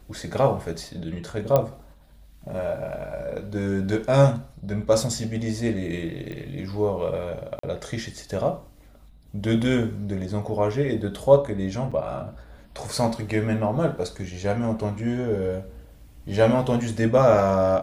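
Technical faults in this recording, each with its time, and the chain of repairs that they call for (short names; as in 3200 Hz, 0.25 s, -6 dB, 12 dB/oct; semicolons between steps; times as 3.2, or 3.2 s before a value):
1.56 pop -8 dBFS
6.32 pop -24 dBFS
7.59–7.63 gap 44 ms
11.91–11.92 gap 5.9 ms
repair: de-click; interpolate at 7.59, 44 ms; interpolate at 11.91, 5.9 ms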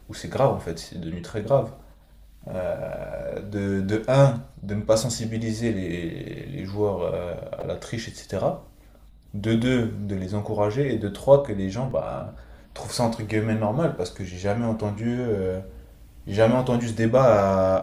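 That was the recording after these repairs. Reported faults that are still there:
none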